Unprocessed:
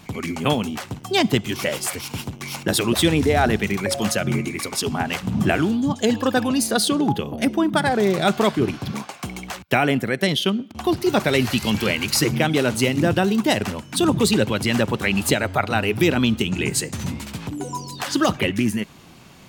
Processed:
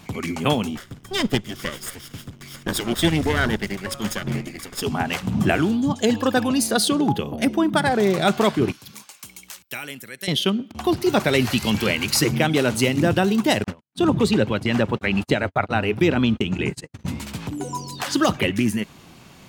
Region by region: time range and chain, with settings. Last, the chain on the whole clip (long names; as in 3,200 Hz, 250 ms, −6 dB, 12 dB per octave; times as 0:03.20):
0:00.77–0:04.82: lower of the sound and its delayed copy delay 0.59 ms + expander for the loud parts, over −28 dBFS
0:08.72–0:10.28: first-order pre-emphasis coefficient 0.9 + notch filter 720 Hz, Q 7.3
0:13.64–0:17.08: low-pass filter 2,700 Hz 6 dB per octave + noise gate −27 dBFS, range −54 dB
whole clip: no processing